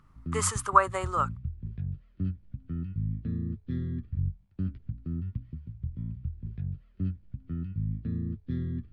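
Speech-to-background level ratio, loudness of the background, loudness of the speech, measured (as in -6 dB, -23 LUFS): 9.0 dB, -36.0 LUFS, -27.0 LUFS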